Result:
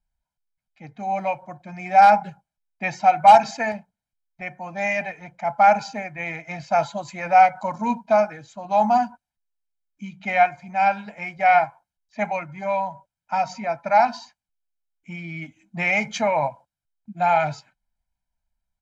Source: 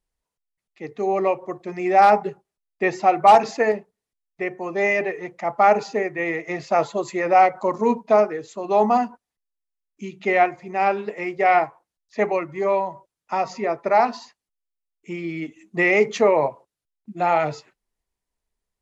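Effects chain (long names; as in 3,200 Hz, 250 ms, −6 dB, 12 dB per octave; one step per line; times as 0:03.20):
parametric band 440 Hz −12 dB 0.78 octaves
comb filter 1.3 ms, depth 85%
one half of a high-frequency compander decoder only
level −1 dB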